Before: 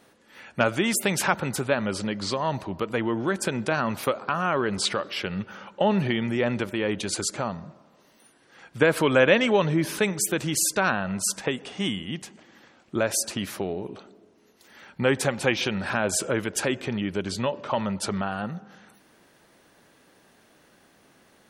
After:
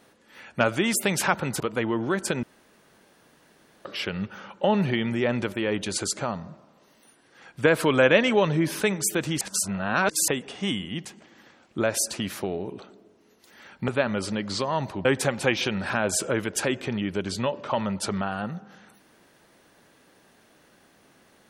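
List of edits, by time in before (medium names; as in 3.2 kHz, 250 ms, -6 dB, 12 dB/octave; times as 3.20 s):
1.60–2.77 s: move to 15.05 s
3.60–5.02 s: room tone
10.58–11.45 s: reverse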